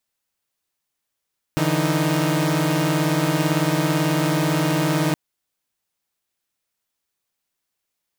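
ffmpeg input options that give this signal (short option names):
-f lavfi -i "aevalsrc='0.1*((2*mod(146.83*t,1)-1)+(2*mod(164.81*t,1)-1)+(2*mod(311.13*t,1)-1))':d=3.57:s=44100"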